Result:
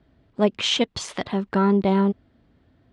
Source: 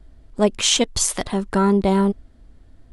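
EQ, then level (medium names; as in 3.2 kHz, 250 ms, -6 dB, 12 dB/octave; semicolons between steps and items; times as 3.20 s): Chebyshev band-pass 120–3300 Hz, order 2; -1.5 dB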